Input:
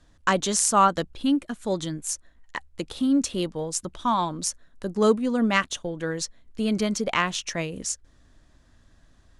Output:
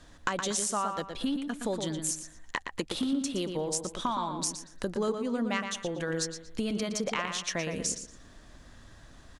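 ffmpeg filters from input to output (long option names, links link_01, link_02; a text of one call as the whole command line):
ffmpeg -i in.wav -filter_complex "[0:a]lowshelf=frequency=210:gain=-5.5,acompressor=threshold=-38dB:ratio=6,asplit=2[link_01][link_02];[link_02]adelay=117,lowpass=frequency=4200:poles=1,volume=-6dB,asplit=2[link_03][link_04];[link_04]adelay=117,lowpass=frequency=4200:poles=1,volume=0.34,asplit=2[link_05][link_06];[link_06]adelay=117,lowpass=frequency=4200:poles=1,volume=0.34,asplit=2[link_07][link_08];[link_08]adelay=117,lowpass=frequency=4200:poles=1,volume=0.34[link_09];[link_01][link_03][link_05][link_07][link_09]amix=inputs=5:normalize=0,volume=8dB" out.wav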